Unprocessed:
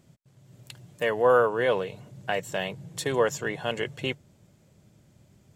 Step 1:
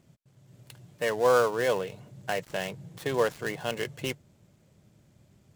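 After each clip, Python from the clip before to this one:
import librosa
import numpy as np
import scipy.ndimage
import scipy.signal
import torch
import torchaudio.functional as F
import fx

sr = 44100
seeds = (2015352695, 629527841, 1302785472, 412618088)

y = fx.dead_time(x, sr, dead_ms=0.086)
y = F.gain(torch.from_numpy(y), -2.0).numpy()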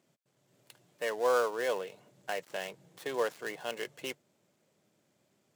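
y = scipy.signal.sosfilt(scipy.signal.butter(2, 310.0, 'highpass', fs=sr, output='sos'), x)
y = F.gain(torch.from_numpy(y), -5.0).numpy()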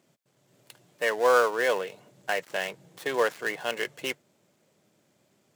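y = fx.dynamic_eq(x, sr, hz=1800.0, q=1.1, threshold_db=-47.0, ratio=4.0, max_db=5)
y = F.gain(torch.from_numpy(y), 5.5).numpy()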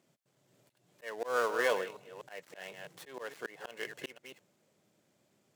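y = fx.reverse_delay(x, sr, ms=246, wet_db=-12.5)
y = fx.cheby_harmonics(y, sr, harmonics=(7,), levels_db=(-34,), full_scale_db=-8.0)
y = fx.auto_swell(y, sr, attack_ms=268.0)
y = F.gain(torch.from_numpy(y), -4.0).numpy()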